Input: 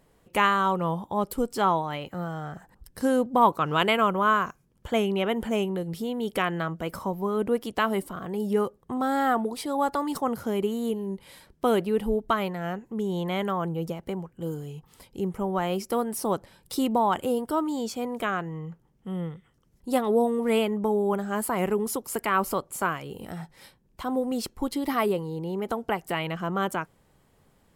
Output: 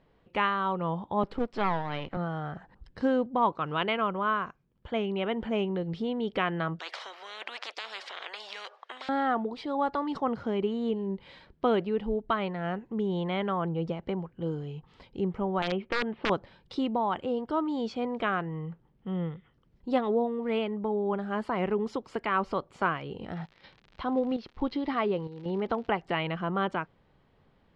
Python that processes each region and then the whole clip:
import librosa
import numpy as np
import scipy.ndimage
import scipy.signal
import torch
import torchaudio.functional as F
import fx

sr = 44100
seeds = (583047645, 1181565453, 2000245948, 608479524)

y = fx.chain(x, sr, fx.halfwave_gain(db=-12.0),
    fx.band_squash(depth_pct=40), at=(1.23, 2.17))
y = fx.chain(y, sr, fx.ellip_highpass(hz=690.0, order=4, stop_db=80),
    fx.spectral_comp(ratio=10.0), at=(6.79, 9.09))
y = fx.chain(y, sr, fx.steep_lowpass(hz=3400.0, slope=48),
    fx.overflow_wrap(gain_db=17.5), at=(15.62, 16.3))
y = fx.steep_lowpass(y, sr, hz=5900.0, slope=36, at=(23.34, 25.87), fade=0.02)
y = fx.chopper(y, sr, hz=1.1, depth_pct=65, duty_pct=80, at=(23.34, 25.87), fade=0.02)
y = fx.dmg_crackle(y, sr, seeds[0], per_s=110.0, level_db=-38.0, at=(23.34, 25.87), fade=0.02)
y = scipy.signal.sosfilt(scipy.signal.butter(4, 4100.0, 'lowpass', fs=sr, output='sos'), y)
y = fx.rider(y, sr, range_db=3, speed_s=0.5)
y = F.gain(torch.from_numpy(y), -3.0).numpy()